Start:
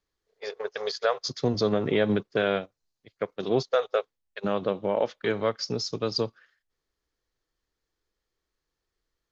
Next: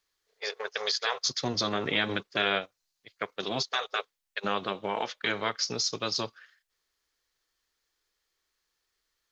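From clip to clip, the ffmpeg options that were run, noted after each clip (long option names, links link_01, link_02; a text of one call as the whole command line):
ffmpeg -i in.wav -af "tiltshelf=frequency=720:gain=-8,afftfilt=real='re*lt(hypot(re,im),0.282)':imag='im*lt(hypot(re,im),0.282)':win_size=1024:overlap=0.75" out.wav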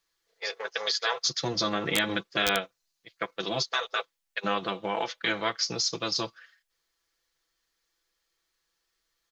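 ffmpeg -i in.wav -af "aecho=1:1:6:0.58,aeval=exprs='(mod(4.47*val(0)+1,2)-1)/4.47':channel_layout=same" out.wav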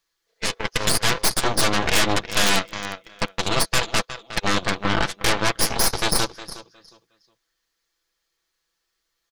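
ffmpeg -i in.wav -filter_complex "[0:a]asplit=2[link_01][link_02];[link_02]aecho=0:1:362|724|1086:0.251|0.0628|0.0157[link_03];[link_01][link_03]amix=inputs=2:normalize=0,aeval=exprs='0.251*(cos(1*acos(clip(val(0)/0.251,-1,1)))-cos(1*PI/2))+0.126*(cos(8*acos(clip(val(0)/0.251,-1,1)))-cos(8*PI/2))':channel_layout=same,volume=1.5dB" out.wav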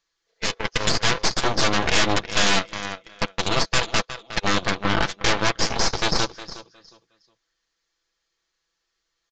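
ffmpeg -i in.wav -af "aresample=16000,aresample=44100" out.wav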